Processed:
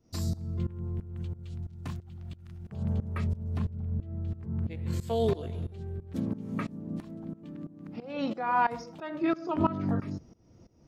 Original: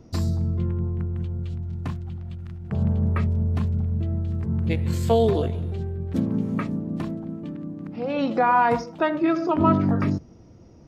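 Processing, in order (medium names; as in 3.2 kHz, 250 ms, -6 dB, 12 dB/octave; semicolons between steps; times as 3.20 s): treble shelf 3.7 kHz +10.5 dB, from 3.57 s -3 dB, from 5.01 s +5.5 dB; tremolo saw up 3 Hz, depth 90%; trim -4.5 dB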